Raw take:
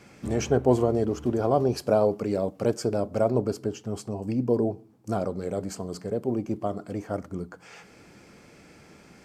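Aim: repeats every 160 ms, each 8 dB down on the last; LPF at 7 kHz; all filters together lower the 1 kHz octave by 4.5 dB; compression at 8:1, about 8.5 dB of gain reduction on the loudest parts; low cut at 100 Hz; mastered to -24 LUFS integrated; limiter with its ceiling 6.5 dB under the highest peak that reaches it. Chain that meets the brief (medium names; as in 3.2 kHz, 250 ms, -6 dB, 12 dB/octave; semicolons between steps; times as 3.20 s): high-pass 100 Hz; low-pass 7 kHz; peaking EQ 1 kHz -7.5 dB; compression 8:1, threshold -26 dBFS; peak limiter -23 dBFS; feedback delay 160 ms, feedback 40%, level -8 dB; trim +10.5 dB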